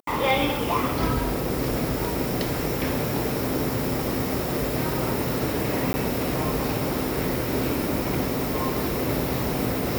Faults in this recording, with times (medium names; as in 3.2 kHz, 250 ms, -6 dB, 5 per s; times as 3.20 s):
5.93–5.94 s: dropout 10 ms